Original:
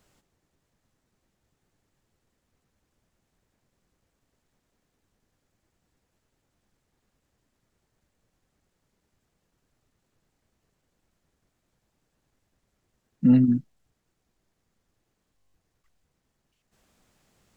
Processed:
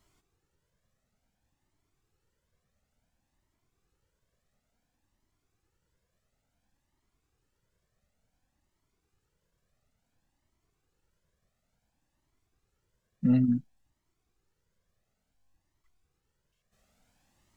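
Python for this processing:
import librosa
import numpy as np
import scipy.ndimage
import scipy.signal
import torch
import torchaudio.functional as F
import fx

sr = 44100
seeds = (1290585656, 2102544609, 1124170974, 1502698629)

y = fx.comb_cascade(x, sr, direction='rising', hz=0.57)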